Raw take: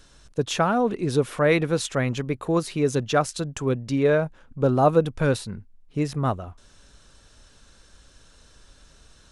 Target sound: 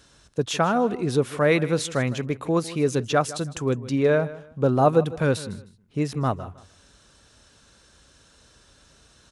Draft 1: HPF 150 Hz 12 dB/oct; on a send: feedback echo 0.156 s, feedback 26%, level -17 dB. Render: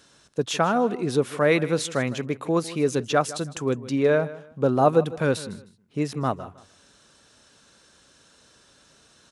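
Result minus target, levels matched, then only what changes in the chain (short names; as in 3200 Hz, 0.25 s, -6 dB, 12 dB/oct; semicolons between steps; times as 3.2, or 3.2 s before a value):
125 Hz band -3.0 dB
change: HPF 66 Hz 12 dB/oct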